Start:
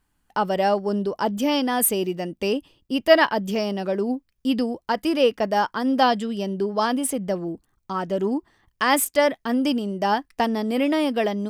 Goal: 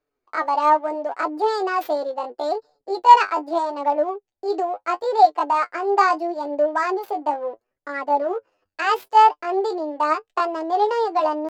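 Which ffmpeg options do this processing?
ffmpeg -i in.wav -filter_complex "[0:a]equalizer=frequency=125:width_type=o:width=1:gain=-7,equalizer=frequency=500:width_type=o:width=1:gain=7,equalizer=frequency=2000:width_type=o:width=1:gain=-7,asplit=2[link_01][link_02];[link_02]adynamicsmooth=sensitivity=6.5:basefreq=620,volume=0dB[link_03];[link_01][link_03]amix=inputs=2:normalize=0,flanger=delay=10:depth=4.9:regen=27:speed=0.75:shape=sinusoidal,asetrate=66075,aresample=44100,atempo=0.66742,acrossover=split=260 5700:gain=0.126 1 0.141[link_04][link_05][link_06];[link_04][link_05][link_06]amix=inputs=3:normalize=0,volume=-3.5dB" out.wav

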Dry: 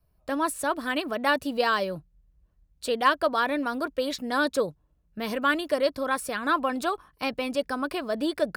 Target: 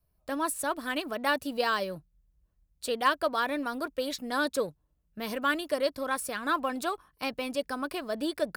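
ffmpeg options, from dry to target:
ffmpeg -i in.wav -filter_complex "[0:a]highshelf=frequency=6600:gain=7,asplit=2[link_01][link_02];[link_02]aeval=exprs='sgn(val(0))*max(abs(val(0))-0.0141,0)':channel_layout=same,volume=-10.5dB[link_03];[link_01][link_03]amix=inputs=2:normalize=0,volume=-6dB" out.wav

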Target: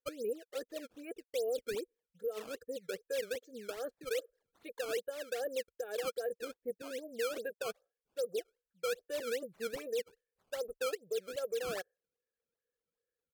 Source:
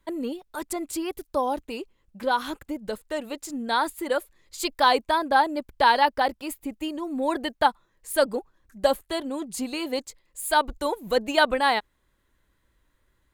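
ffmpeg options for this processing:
ffmpeg -i in.wav -filter_complex "[0:a]acrossover=split=250|1600[link_01][link_02][link_03];[link_03]asoftclip=type=tanh:threshold=-28.5dB[link_04];[link_01][link_02][link_04]amix=inputs=3:normalize=0,afftdn=noise_reduction=21:noise_floor=-40,areverse,acompressor=threshold=-36dB:ratio=6,areverse,asplit=3[link_05][link_06][link_07];[link_05]bandpass=frequency=530:width_type=q:width=8,volume=0dB[link_08];[link_06]bandpass=frequency=1840:width_type=q:width=8,volume=-6dB[link_09];[link_07]bandpass=frequency=2480:width_type=q:width=8,volume=-9dB[link_10];[link_08][link_09][link_10]amix=inputs=3:normalize=0,aemphasis=mode=reproduction:type=50fm,aecho=1:1:1.5:0.57,alimiter=level_in=16.5dB:limit=-24dB:level=0:latency=1:release=83,volume=-16.5dB,equalizer=frequency=2400:width=2:gain=-5.5,bandreject=frequency=1400:width=21,acrusher=samples=12:mix=1:aa=0.000001:lfo=1:lforange=19.2:lforate=2.5,asetrate=39289,aresample=44100,atempo=1.12246,volume=12dB" out.wav

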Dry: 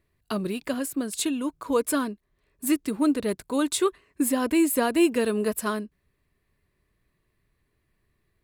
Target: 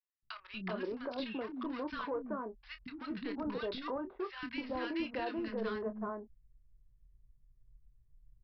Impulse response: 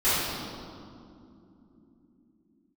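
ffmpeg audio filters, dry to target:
-filter_complex "[0:a]anlmdn=2.51,asubboost=boost=8.5:cutoff=110,acompressor=threshold=-47dB:ratio=2,alimiter=level_in=12.5dB:limit=-24dB:level=0:latency=1:release=261,volume=-12.5dB,asplit=2[link_01][link_02];[link_02]highpass=frequency=720:poles=1,volume=21dB,asoftclip=type=tanh:threshold=-25dB[link_03];[link_01][link_03]amix=inputs=2:normalize=0,lowpass=frequency=1500:poles=1,volume=-6dB,aresample=11025,volume=34dB,asoftclip=hard,volume=-34dB,aresample=44100,asplit=2[link_04][link_05];[link_05]adelay=27,volume=-10dB[link_06];[link_04][link_06]amix=inputs=2:normalize=0,acrossover=split=260|1200[link_07][link_08][link_09];[link_07]adelay=230[link_10];[link_08]adelay=380[link_11];[link_10][link_11][link_09]amix=inputs=3:normalize=0,volume=3.5dB"

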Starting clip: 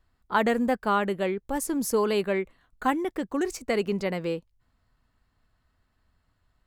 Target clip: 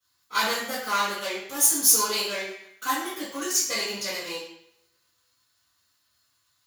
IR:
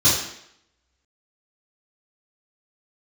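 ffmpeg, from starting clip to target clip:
-filter_complex "[0:a]aeval=exprs='if(lt(val(0),0),0.447*val(0),val(0))':channel_layout=same,aderivative[link_01];[1:a]atrim=start_sample=2205[link_02];[link_01][link_02]afir=irnorm=-1:irlink=0"

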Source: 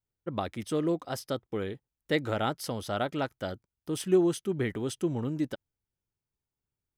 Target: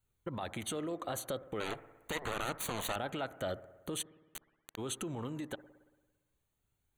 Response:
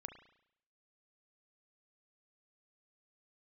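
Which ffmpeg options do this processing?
-filter_complex "[0:a]acompressor=threshold=-33dB:ratio=6,alimiter=level_in=9.5dB:limit=-24dB:level=0:latency=1:release=64,volume=-9.5dB,asettb=1/sr,asplit=3[link_01][link_02][link_03];[link_01]atrim=end=1.604[link_04];[link_02]atrim=start=1.6:end=2.96,asetpts=PTS-STARTPTS,afade=type=in:duration=0.004:curve=qsin,afade=type=out:start_time=1.356:duration=0.004:curve=qsin,aeval=exprs='0.0224*(cos(1*acos(clip(val(0)/0.0224,-1,1)))-cos(1*PI/2))+0.00708*(cos(7*acos(clip(val(0)/0.0224,-1,1)))-cos(7*PI/2))':channel_layout=same[link_05];[link_03]atrim=start=2.956[link_06];[link_04][link_05]acrossfade=duration=0.004:curve1=hsin:curve2=qsin[link_07];[link_07][link_06]acrossfade=duration=0.004:curve1=qsin:curve2=hsin,acrossover=split=450[link_08][link_09];[link_08]acompressor=threshold=-47dB:ratio=10[link_10];[link_10][link_09]amix=inputs=2:normalize=0,flanger=delay=0.7:depth=1.2:regen=68:speed=0.4:shape=triangular,asplit=3[link_11][link_12][link_13];[link_11]afade=type=out:start_time=4.01:duration=0.02[link_14];[link_12]acrusher=bits=4:dc=4:mix=0:aa=0.000001,afade=type=in:start_time=4.01:duration=0.02,afade=type=out:start_time=4.77:duration=0.02[link_15];[link_13]afade=type=in:start_time=4.77:duration=0.02[link_16];[link_14][link_15][link_16]amix=inputs=3:normalize=0,asuperstop=centerf=5200:order=12:qfactor=3.5,asplit=2[link_17][link_18];[1:a]atrim=start_sample=2205,asetrate=26901,aresample=44100[link_19];[link_18][link_19]afir=irnorm=-1:irlink=0,volume=-4.5dB[link_20];[link_17][link_20]amix=inputs=2:normalize=0,volume=9dB"

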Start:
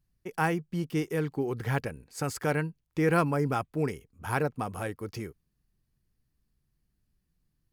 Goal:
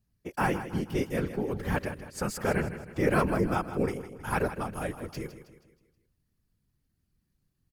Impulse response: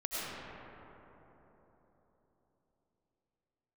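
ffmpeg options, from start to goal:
-filter_complex "[0:a]afftfilt=real='hypot(re,im)*cos(2*PI*random(0))':imag='hypot(re,im)*sin(2*PI*random(1))':win_size=512:overlap=0.75,asplit=2[link_01][link_02];[link_02]aecho=0:1:159|318|477|636|795:0.251|0.113|0.0509|0.0229|0.0103[link_03];[link_01][link_03]amix=inputs=2:normalize=0,volume=6dB"

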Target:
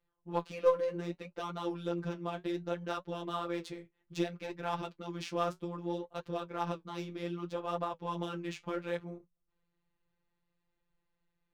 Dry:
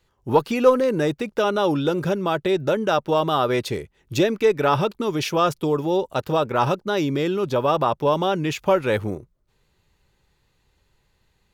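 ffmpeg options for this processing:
ffmpeg -i in.wav -af "afftfilt=real='hypot(re,im)*cos(PI*b)':imag='0':win_size=1024:overlap=0.75,adynamicsmooth=sensitivity=7.5:basefreq=3300,aeval=exprs='0.631*(cos(1*acos(clip(val(0)/0.631,-1,1)))-cos(1*PI/2))+0.0158*(cos(2*acos(clip(val(0)/0.631,-1,1)))-cos(2*PI/2))+0.0178*(cos(3*acos(clip(val(0)/0.631,-1,1)))-cos(3*PI/2))':channel_layout=same,flanger=delay=6.9:depth=9.4:regen=-46:speed=0.64:shape=triangular,volume=-7.5dB" out.wav

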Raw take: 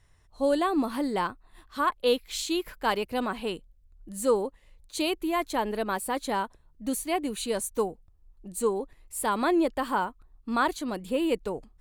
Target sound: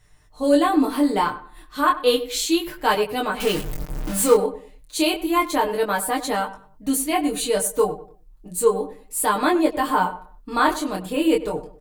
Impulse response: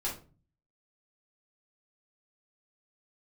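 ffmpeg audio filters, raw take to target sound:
-filter_complex "[0:a]asettb=1/sr,asplit=3[link_01][link_02][link_03];[link_01]atrim=end=3.404[link_04];[link_02]atrim=start=3.4:end=4.34,asetpts=PTS-STARTPTS,afade=type=in:duration=0.004:curve=qsin,afade=type=out:start_time=0.936:duration=0.004:curve=qsin,aeval=exprs='val(0)+0.5*0.0376*sgn(val(0))':channel_layout=same[link_05];[link_03]atrim=start=4.336[link_06];[link_04][link_05]acrossfade=duration=0.004:curve1=hsin:curve2=qsin[link_07];[link_07][link_06]acrossfade=duration=0.004:curve1=qsin:curve2=hsin,highshelf=frequency=9700:gain=6.5,aecho=1:1:6.6:0.76,asplit=2[link_08][link_09];[link_09]adelay=98,lowpass=frequency=1900:poles=1,volume=-13.5dB,asplit=2[link_10][link_11];[link_11]adelay=98,lowpass=frequency=1900:poles=1,volume=0.32,asplit=2[link_12][link_13];[link_13]adelay=98,lowpass=frequency=1900:poles=1,volume=0.32[link_14];[link_08][link_10][link_12][link_14]amix=inputs=4:normalize=0,flanger=delay=19:depth=6.8:speed=0.32,volume=7.5dB"

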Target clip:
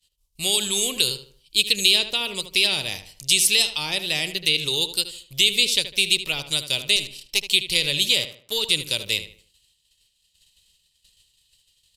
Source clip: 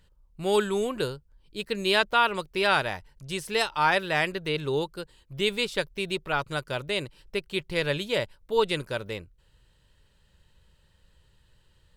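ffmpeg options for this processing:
ffmpeg -i in.wav -filter_complex "[0:a]asettb=1/sr,asplit=3[link_01][link_02][link_03];[link_01]atrim=end=6.964[link_04];[link_02]atrim=start=6.96:end=7.44,asetpts=PTS-STARTPTS,afade=type=in:duration=0.004:curve=qsin,afade=type=out:start_time=0.476:duration=0.004:curve=qsin,aeval=exprs='if(lt(val(0),0),0.251*val(0),val(0))':channel_layout=same[link_05];[link_03]atrim=start=7.436[link_06];[link_04][link_05]acrossfade=duration=0.004:curve1=hsin:curve2=qsin[link_07];[link_07][link_06]acrossfade=duration=0.004:curve1=qsin:curve2=hsin,agate=range=-33dB:threshold=-50dB:ratio=3:detection=peak,acrossover=split=510[link_08][link_09];[link_08]alimiter=level_in=3dB:limit=-24dB:level=0:latency=1,volume=-3dB[link_10];[link_09]acompressor=threshold=-35dB:ratio=6[link_11];[link_10][link_11]amix=inputs=2:normalize=0,aexciter=amount=15.6:drive=5.5:freq=2400,asettb=1/sr,asplit=3[link_12][link_13][link_14];[link_12]atrim=end=8.114[link_15];[link_13]atrim=start=8.11:end=8.75,asetpts=PTS-STARTPTS,afade=type=in:duration=0.004:curve=qsin,afade=type=out:start_time=0.636:duration=0.004:curve=qsin,aeval=exprs='val(0)*gte(abs(val(0)),0.0224)':channel_layout=same[link_16];[link_14]atrim=start=8.746[link_17];[link_15][link_16]acrossfade=duration=0.004:curve1=hsin:curve2=qsin[link_18];[link_18][link_17]acrossfade=duration=0.004:curve1=qsin:curve2=hsin,asplit=2[link_19][link_20];[link_20]adelay=76,lowpass=frequency=2900:poles=1,volume=-10dB,asplit=2[link_21][link_22];[link_22]adelay=76,lowpass=frequency=2900:poles=1,volume=0.36,asplit=2[link_23][link_24];[link_24]adelay=76,lowpass=frequency=2900:poles=1,volume=0.36,asplit=2[link_25][link_26];[link_26]adelay=76,lowpass=frequency=2900:poles=1,volume=0.36[link_27];[link_21][link_23][link_25][link_27]amix=inputs=4:normalize=0[link_28];[link_19][link_28]amix=inputs=2:normalize=0,aresample=32000,aresample=44100,volume=-1.5dB" out.wav

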